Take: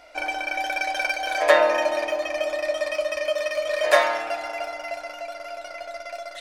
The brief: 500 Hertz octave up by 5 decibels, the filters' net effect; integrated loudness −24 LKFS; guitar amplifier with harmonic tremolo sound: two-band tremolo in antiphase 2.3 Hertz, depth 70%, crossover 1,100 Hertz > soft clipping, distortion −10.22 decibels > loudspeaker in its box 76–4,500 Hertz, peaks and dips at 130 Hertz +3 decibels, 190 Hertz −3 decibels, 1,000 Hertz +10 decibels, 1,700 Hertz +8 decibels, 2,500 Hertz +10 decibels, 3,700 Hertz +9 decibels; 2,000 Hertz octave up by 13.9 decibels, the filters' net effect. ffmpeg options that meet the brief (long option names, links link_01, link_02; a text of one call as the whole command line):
ffmpeg -i in.wav -filter_complex "[0:a]equalizer=frequency=500:width_type=o:gain=5,equalizer=frequency=2000:width_type=o:gain=6,acrossover=split=1100[link_01][link_02];[link_01]aeval=exprs='val(0)*(1-0.7/2+0.7/2*cos(2*PI*2.3*n/s))':channel_layout=same[link_03];[link_02]aeval=exprs='val(0)*(1-0.7/2-0.7/2*cos(2*PI*2.3*n/s))':channel_layout=same[link_04];[link_03][link_04]amix=inputs=2:normalize=0,asoftclip=threshold=-16dB,highpass=76,equalizer=frequency=130:width_type=q:width=4:gain=3,equalizer=frequency=190:width_type=q:width=4:gain=-3,equalizer=frequency=1000:width_type=q:width=4:gain=10,equalizer=frequency=1700:width_type=q:width=4:gain=8,equalizer=frequency=2500:width_type=q:width=4:gain=10,equalizer=frequency=3700:width_type=q:width=4:gain=9,lowpass=frequency=4500:width=0.5412,lowpass=frequency=4500:width=1.3066,volume=-5dB" out.wav